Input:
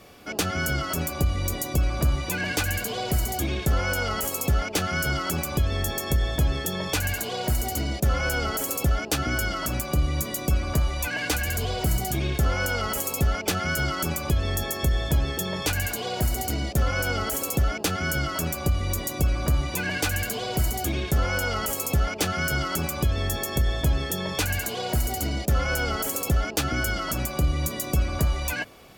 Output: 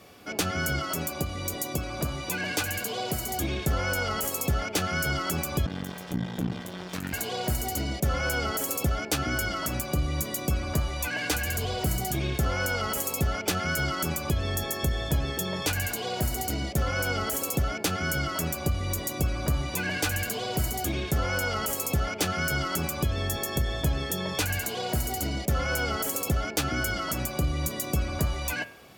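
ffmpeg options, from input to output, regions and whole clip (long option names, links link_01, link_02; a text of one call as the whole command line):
ffmpeg -i in.wav -filter_complex "[0:a]asettb=1/sr,asplit=3[link_01][link_02][link_03];[link_01]atrim=end=0.794[link_04];[link_02]atrim=start=0.79:end=3.31,asetpts=PTS-STARTPTS,afade=type=in:duration=0.004:curve=qsin,afade=type=out:start_time=2.516:duration=0.004:curve=qsin,highpass=frequency=150:poles=1,equalizer=frequency=1800:width_type=o:width=0.26:gain=-3[link_05];[link_03]atrim=start=3.306[link_06];[link_04][link_05]acrossfade=duration=0.004:curve1=hsin:curve2=qsin[link_07];[link_07][link_06]acrossfade=duration=0.004:curve1=qsin:curve2=hsin,asettb=1/sr,asplit=3[link_08][link_09][link_10];[link_08]atrim=end=5.664[link_11];[link_09]atrim=start=5.66:end=7.13,asetpts=PTS-STARTPTS,afade=type=in:duration=0.004:curve=qsin,afade=type=out:start_time=1.466:duration=0.004:curve=qsin,highshelf=frequency=4900:gain=-8,aeval=exprs='max(val(0),0)':channel_layout=same,aeval=exprs='val(0)*sin(2*PI*180*n/s)':channel_layout=same[link_12];[link_10]atrim=start=7.126[link_13];[link_11][link_12]acrossfade=duration=0.004:curve1=hsin:curve2=qsin[link_14];[link_14][link_13]acrossfade=duration=0.004:curve1=qsin:curve2=hsin,highpass=65,bandreject=frequency=116.4:width_type=h:width=4,bandreject=frequency=232.8:width_type=h:width=4,bandreject=frequency=349.2:width_type=h:width=4,bandreject=frequency=465.6:width_type=h:width=4,bandreject=frequency=582:width_type=h:width=4,bandreject=frequency=698.4:width_type=h:width=4,bandreject=frequency=814.8:width_type=h:width=4,bandreject=frequency=931.2:width_type=h:width=4,bandreject=frequency=1047.6:width_type=h:width=4,bandreject=frequency=1164:width_type=h:width=4,bandreject=frequency=1280.4:width_type=h:width=4,bandreject=frequency=1396.8:width_type=h:width=4,bandreject=frequency=1513.2:width_type=h:width=4,bandreject=frequency=1629.6:width_type=h:width=4,bandreject=frequency=1746:width_type=h:width=4,bandreject=frequency=1862.4:width_type=h:width=4,bandreject=frequency=1978.8:width_type=h:width=4,bandreject=frequency=2095.2:width_type=h:width=4,bandreject=frequency=2211.6:width_type=h:width=4,bandreject=frequency=2328:width_type=h:width=4,bandreject=frequency=2444.4:width_type=h:width=4,bandreject=frequency=2560.8:width_type=h:width=4,bandreject=frequency=2677.2:width_type=h:width=4,bandreject=frequency=2793.6:width_type=h:width=4,bandreject=frequency=2910:width_type=h:width=4,bandreject=frequency=3026.4:width_type=h:width=4,bandreject=frequency=3142.8:width_type=h:width=4,bandreject=frequency=3259.2:width_type=h:width=4,bandreject=frequency=3375.6:width_type=h:width=4,volume=-1.5dB" out.wav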